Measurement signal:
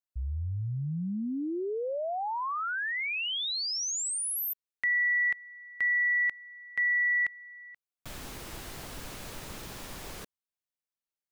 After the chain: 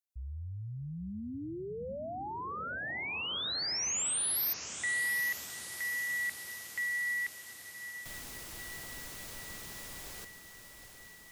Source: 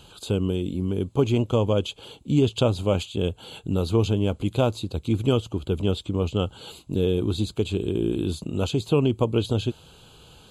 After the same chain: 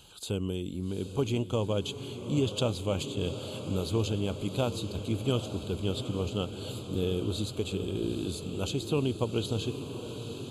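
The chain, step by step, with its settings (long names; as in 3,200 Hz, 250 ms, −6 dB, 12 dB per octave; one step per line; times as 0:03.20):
high-shelf EQ 3,700 Hz +9 dB
feedback delay with all-pass diffusion 812 ms, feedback 71%, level −10 dB
level −8 dB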